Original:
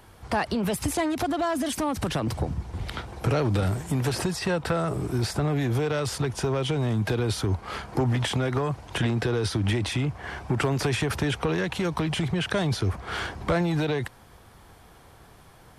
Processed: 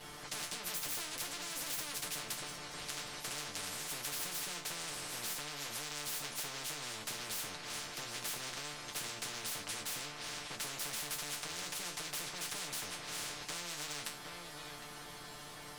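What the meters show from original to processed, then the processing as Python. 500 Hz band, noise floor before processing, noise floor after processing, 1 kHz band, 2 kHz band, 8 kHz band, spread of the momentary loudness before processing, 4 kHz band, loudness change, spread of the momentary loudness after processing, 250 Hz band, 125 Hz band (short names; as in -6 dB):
-22.5 dB, -52 dBFS, -49 dBFS, -14.5 dB, -10.0 dB, -0.5 dB, 6 LU, -5.5 dB, -12.5 dB, 6 LU, -25.5 dB, -29.0 dB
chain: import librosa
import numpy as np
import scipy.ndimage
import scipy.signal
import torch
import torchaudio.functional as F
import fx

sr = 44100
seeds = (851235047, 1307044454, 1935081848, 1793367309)

p1 = fx.lower_of_two(x, sr, delay_ms=6.7)
p2 = fx.peak_eq(p1, sr, hz=4700.0, db=7.5, octaves=1.3)
p3 = fx.resonator_bank(p2, sr, root=50, chord='minor', decay_s=0.23)
p4 = p3 + fx.echo_single(p3, sr, ms=759, db=-22.5, dry=0)
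p5 = fx.spectral_comp(p4, sr, ratio=10.0)
y = p5 * librosa.db_to_amplitude(2.5)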